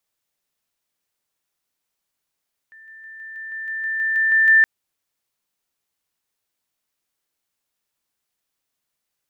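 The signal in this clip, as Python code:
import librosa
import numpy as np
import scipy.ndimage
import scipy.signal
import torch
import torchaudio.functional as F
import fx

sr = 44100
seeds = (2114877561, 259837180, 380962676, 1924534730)

y = fx.level_ladder(sr, hz=1780.0, from_db=-42.5, step_db=3.0, steps=12, dwell_s=0.16, gap_s=0.0)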